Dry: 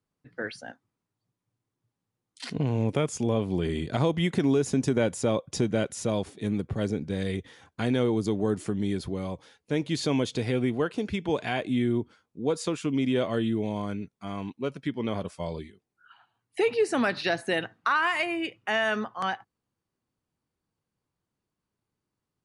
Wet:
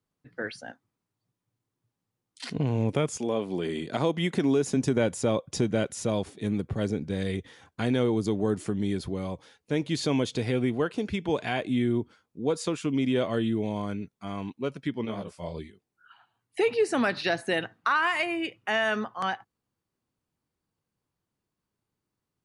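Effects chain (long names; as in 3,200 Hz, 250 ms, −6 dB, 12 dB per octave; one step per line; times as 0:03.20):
0:03.17–0:04.75: high-pass filter 280 Hz → 130 Hz 12 dB per octave
0:15.04–0:15.54: micro pitch shift up and down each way 41 cents → 58 cents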